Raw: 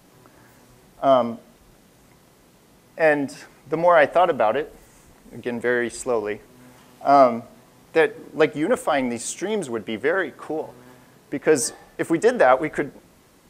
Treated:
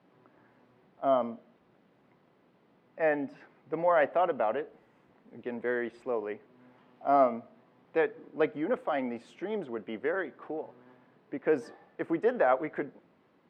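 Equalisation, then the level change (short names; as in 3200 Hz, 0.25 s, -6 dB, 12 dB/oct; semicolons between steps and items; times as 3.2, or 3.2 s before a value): HPF 170 Hz 12 dB/oct; air absorption 390 m; -8.0 dB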